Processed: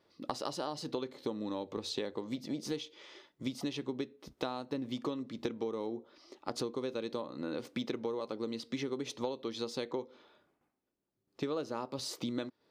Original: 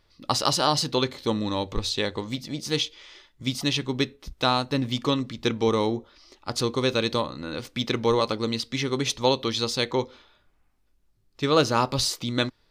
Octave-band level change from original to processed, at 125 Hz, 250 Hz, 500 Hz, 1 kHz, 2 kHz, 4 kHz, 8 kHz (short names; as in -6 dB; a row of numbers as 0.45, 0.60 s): -17.5, -10.0, -11.5, -15.5, -16.5, -17.0, -16.0 dB